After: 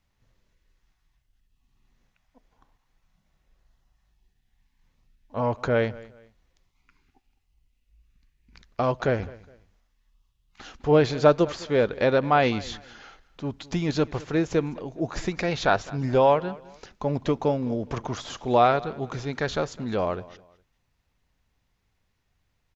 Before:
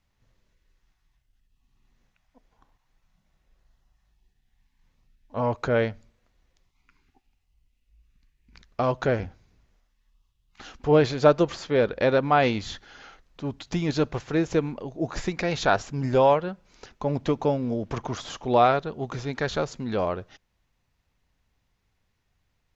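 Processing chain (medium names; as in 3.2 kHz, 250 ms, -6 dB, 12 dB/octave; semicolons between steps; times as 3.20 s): 15.49–16.38 s: low-pass 6.4 kHz 12 dB/octave; on a send: feedback delay 207 ms, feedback 30%, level -20.5 dB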